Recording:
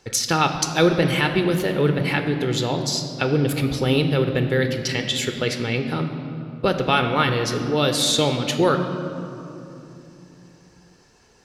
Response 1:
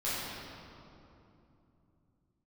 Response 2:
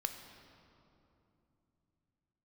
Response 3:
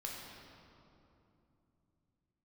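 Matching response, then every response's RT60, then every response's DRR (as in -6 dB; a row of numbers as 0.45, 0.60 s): 2; 2.9, 3.0, 2.9 s; -12.0, 6.0, -3.0 dB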